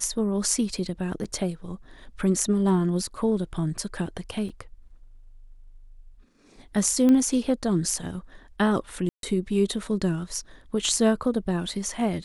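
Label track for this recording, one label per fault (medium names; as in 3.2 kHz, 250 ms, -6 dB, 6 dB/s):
1.240000	1.250000	dropout 6.3 ms
4.490000	4.500000	dropout 5.9 ms
7.090000	7.090000	pop -13 dBFS
9.090000	9.230000	dropout 142 ms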